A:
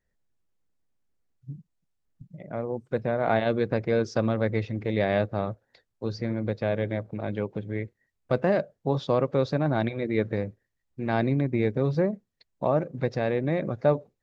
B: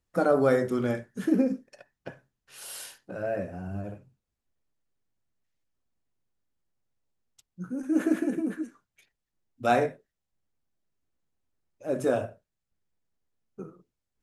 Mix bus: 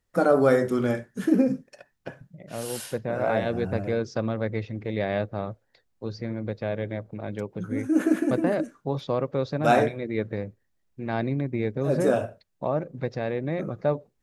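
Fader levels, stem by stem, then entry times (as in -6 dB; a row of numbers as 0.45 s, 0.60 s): -2.5 dB, +3.0 dB; 0.00 s, 0.00 s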